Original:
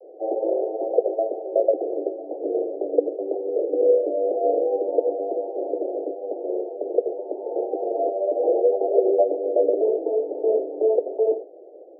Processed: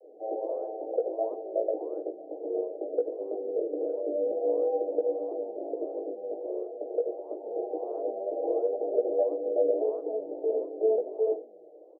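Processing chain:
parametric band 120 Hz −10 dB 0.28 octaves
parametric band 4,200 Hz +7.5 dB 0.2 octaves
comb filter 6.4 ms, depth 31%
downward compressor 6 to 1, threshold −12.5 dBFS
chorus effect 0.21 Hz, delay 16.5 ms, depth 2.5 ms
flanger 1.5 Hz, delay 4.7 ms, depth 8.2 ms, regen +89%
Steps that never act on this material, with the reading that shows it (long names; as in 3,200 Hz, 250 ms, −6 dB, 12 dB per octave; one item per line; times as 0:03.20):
parametric band 120 Hz: nothing at its input below 270 Hz
parametric band 4,200 Hz: nothing at its input above 810 Hz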